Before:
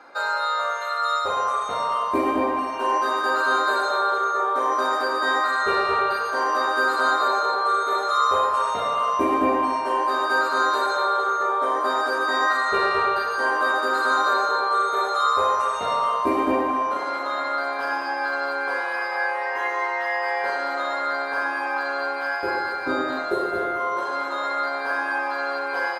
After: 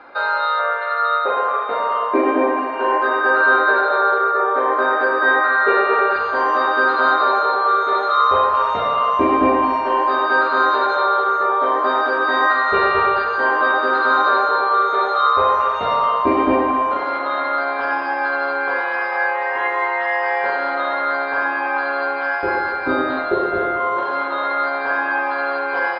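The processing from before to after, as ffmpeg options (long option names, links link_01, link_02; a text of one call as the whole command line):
ffmpeg -i in.wav -filter_complex "[0:a]asettb=1/sr,asplit=3[link_01][link_02][link_03];[link_01]atrim=end=0.594[link_04];[link_02]atrim=start=0.59:end=6.16,asetpts=PTS-STARTPTS,afade=type=in:duration=0.004:curve=qsin,afade=type=out:start_time=5.566:duration=0.004:curve=qsin,highpass=frequency=240:width=0.5412,highpass=frequency=240:width=1.3066,equalizer=frequency=460:width_type=q:width=4:gain=5,equalizer=frequency=1100:width_type=q:width=4:gain=-3,equalizer=frequency=1600:width_type=q:width=4:gain=5,equalizer=frequency=3100:width_type=q:width=4:gain=-5,lowpass=frequency=3800:width=0.5412,lowpass=frequency=3800:width=1.3066[link_05];[link_03]atrim=start=6.156[link_06];[link_04][link_05]acrossfade=duration=0.004:curve1=hsin:curve2=qsin[link_07];[link_07][link_06]acrossfade=duration=0.004:curve1=qsin:curve2=hsin,lowpass=frequency=3700:width=0.5412,lowpass=frequency=3700:width=1.3066,lowshelf=frequency=92:gain=7,volume=5dB" out.wav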